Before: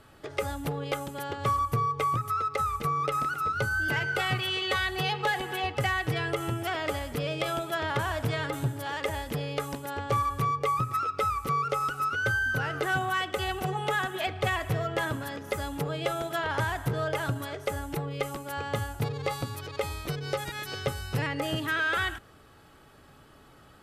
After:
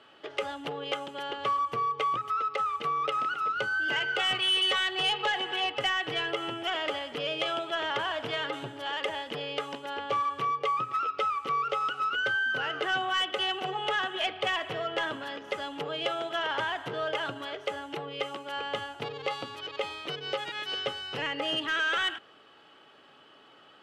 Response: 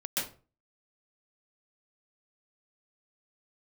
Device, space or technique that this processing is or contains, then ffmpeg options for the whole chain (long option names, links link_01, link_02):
intercom: -af "highpass=330,lowpass=4300,equalizer=frequency=3000:width_type=o:width=0.31:gain=11,asoftclip=type=tanh:threshold=-19dB"